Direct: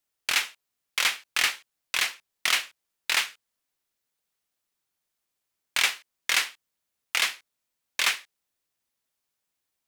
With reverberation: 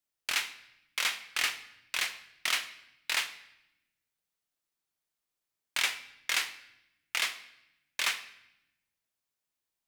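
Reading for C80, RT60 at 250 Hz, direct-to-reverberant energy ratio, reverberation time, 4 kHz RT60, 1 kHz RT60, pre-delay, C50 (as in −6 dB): 16.5 dB, 1.4 s, 10.5 dB, 0.85 s, 0.80 s, 0.80 s, 3 ms, 14.0 dB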